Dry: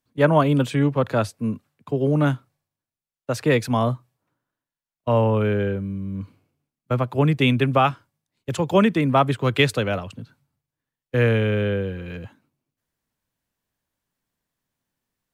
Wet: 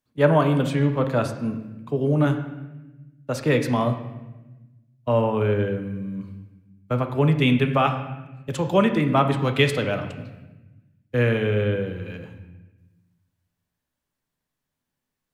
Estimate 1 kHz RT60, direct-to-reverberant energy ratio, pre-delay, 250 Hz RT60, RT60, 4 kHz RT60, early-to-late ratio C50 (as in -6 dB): 1.0 s, 5.5 dB, 5 ms, 1.6 s, 1.1 s, 0.90 s, 9.0 dB